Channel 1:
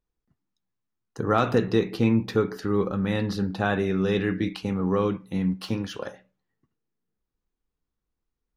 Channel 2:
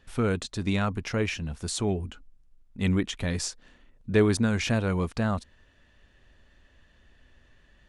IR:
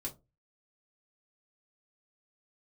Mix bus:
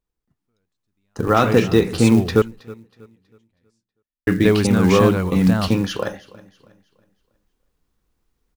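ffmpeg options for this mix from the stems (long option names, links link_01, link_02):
-filter_complex "[0:a]volume=0.5dB,asplit=3[link_01][link_02][link_03];[link_01]atrim=end=2.42,asetpts=PTS-STARTPTS,afade=type=out:start_time=2.416:duration=0.004:curve=hsin[link_04];[link_02]atrim=start=2.42:end=4.27,asetpts=PTS-STARTPTS,volume=0[link_05];[link_03]atrim=start=4.27,asetpts=PTS-STARTPTS,afade=type=in:duration=0.004:curve=hsin[link_06];[link_04][link_05][link_06]concat=n=3:v=0:a=1,asplit=3[link_07][link_08][link_09];[link_08]volume=-21.5dB[link_10];[1:a]adelay=300,volume=-4dB[link_11];[link_09]apad=whole_len=361140[link_12];[link_11][link_12]sidechaingate=range=-45dB:threshold=-42dB:ratio=16:detection=peak[link_13];[link_10]aecho=0:1:321|642|963|1284|1605:1|0.34|0.116|0.0393|0.0134[link_14];[link_07][link_13][link_14]amix=inputs=3:normalize=0,dynaudnorm=framelen=740:gausssize=3:maxgain=12.5dB,acrusher=bits=7:mode=log:mix=0:aa=0.000001"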